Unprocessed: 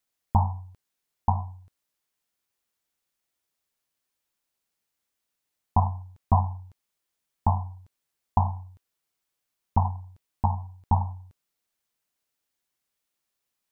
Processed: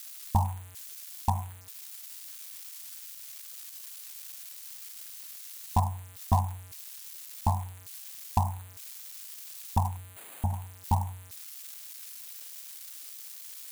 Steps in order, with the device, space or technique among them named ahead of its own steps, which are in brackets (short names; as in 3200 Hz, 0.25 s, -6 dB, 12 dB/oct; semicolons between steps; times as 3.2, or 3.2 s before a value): 9.97–10.53 Chebyshev low-pass 660 Hz, order 3; budget class-D amplifier (switching dead time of 0.092 ms; switching spikes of -23.5 dBFS); gain -3.5 dB